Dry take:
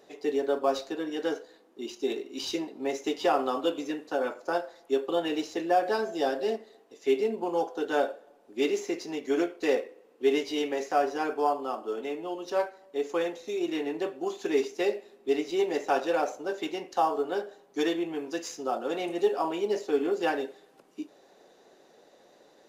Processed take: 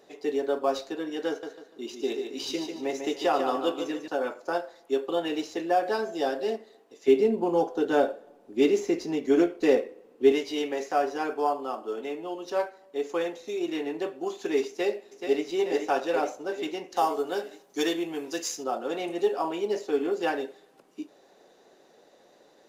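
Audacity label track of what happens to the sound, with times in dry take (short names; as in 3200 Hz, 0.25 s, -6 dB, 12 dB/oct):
1.280000	4.080000	feedback echo 0.147 s, feedback 33%, level -7 dB
7.080000	10.320000	low shelf 350 Hz +11.5 dB
14.680000	15.470000	echo throw 0.43 s, feedback 65%, level -6.5 dB
16.960000	18.640000	high shelf 4300 Hz +10.5 dB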